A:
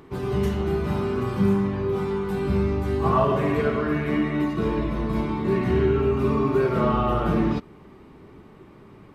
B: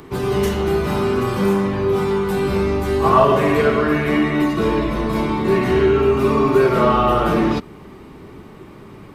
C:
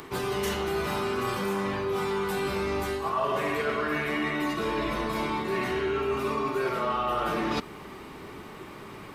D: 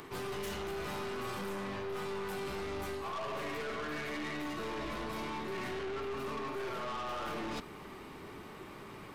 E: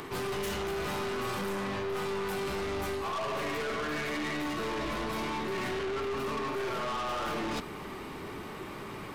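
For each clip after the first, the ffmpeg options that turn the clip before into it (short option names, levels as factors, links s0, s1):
-filter_complex "[0:a]highshelf=f=4300:g=6.5,acrossover=split=280|1200[s0][s1][s2];[s0]asoftclip=type=tanh:threshold=0.0316[s3];[s3][s1][s2]amix=inputs=3:normalize=0,volume=2.51"
-af "lowshelf=f=490:g=-11.5,areverse,acompressor=threshold=0.0316:ratio=5,areverse,volume=1.5"
-af "aeval=exprs='(tanh(39.8*val(0)+0.35)-tanh(0.35))/39.8':c=same,volume=0.631"
-af "asoftclip=type=tanh:threshold=0.0158,volume=2.37"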